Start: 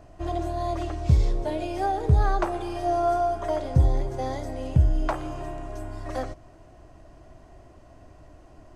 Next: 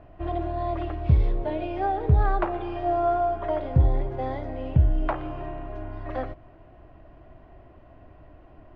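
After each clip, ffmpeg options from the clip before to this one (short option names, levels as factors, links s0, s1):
-af "lowpass=f=3100:w=0.5412,lowpass=f=3100:w=1.3066"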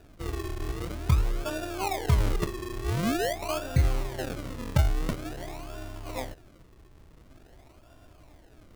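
-af "acrusher=samples=41:mix=1:aa=0.000001:lfo=1:lforange=41:lforate=0.47,volume=0.631"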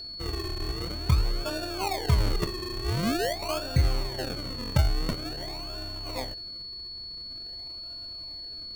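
-af "aeval=exprs='val(0)+0.0141*sin(2*PI*4400*n/s)':c=same"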